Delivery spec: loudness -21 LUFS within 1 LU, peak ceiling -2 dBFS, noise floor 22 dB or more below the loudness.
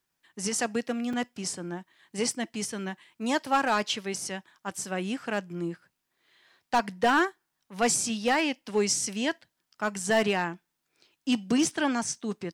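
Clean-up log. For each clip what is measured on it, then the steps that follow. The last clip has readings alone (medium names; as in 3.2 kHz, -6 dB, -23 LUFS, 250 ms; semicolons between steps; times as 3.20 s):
clipped samples 0.4%; clipping level -16.5 dBFS; dropouts 1; longest dropout 4.2 ms; loudness -29.0 LUFS; peak level -16.5 dBFS; loudness target -21.0 LUFS
-> clip repair -16.5 dBFS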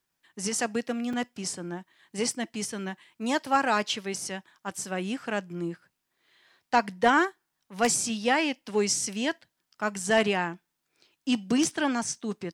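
clipped samples 0.0%; dropouts 1; longest dropout 4.2 ms
-> interpolate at 1.13 s, 4.2 ms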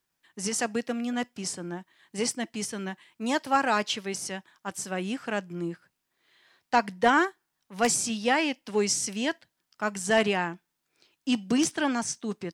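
dropouts 0; loudness -28.0 LUFS; peak level -7.5 dBFS; loudness target -21.0 LUFS
-> trim +7 dB; peak limiter -2 dBFS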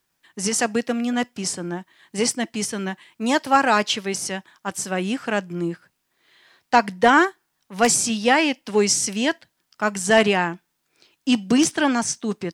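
loudness -21.5 LUFS; peak level -2.0 dBFS; noise floor -74 dBFS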